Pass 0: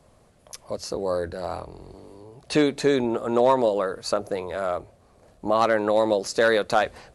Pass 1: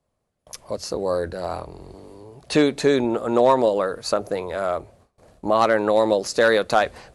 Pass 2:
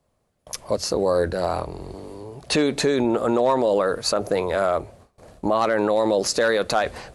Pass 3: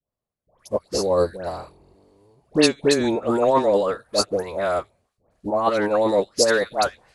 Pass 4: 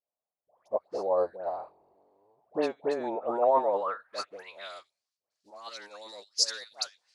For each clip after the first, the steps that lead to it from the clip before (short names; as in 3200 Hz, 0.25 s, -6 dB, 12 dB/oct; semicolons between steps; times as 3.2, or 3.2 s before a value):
gate with hold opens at -45 dBFS; gain +2.5 dB
limiter -16.5 dBFS, peak gain reduction 9.5 dB; gain +5.5 dB
dispersion highs, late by 0.13 s, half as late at 1300 Hz; upward expander 2.5:1, over -32 dBFS; gain +4.5 dB
wow and flutter 26 cents; band-pass sweep 750 Hz -> 5200 Hz, 3.6–4.91; gain -1 dB